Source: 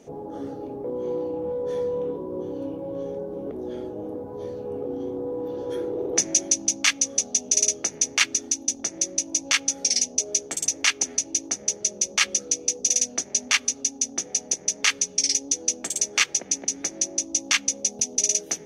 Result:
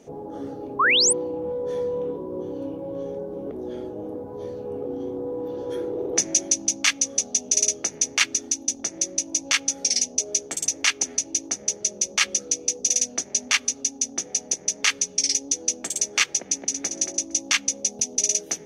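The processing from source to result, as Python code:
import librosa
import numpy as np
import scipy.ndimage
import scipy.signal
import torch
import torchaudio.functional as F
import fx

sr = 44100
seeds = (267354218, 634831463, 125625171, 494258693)

y = fx.spec_paint(x, sr, seeds[0], shape='rise', start_s=0.79, length_s=0.34, low_hz=980.0, high_hz=10000.0, level_db=-18.0)
y = fx.echo_throw(y, sr, start_s=16.49, length_s=0.4, ms=230, feedback_pct=15, wet_db=-7.5)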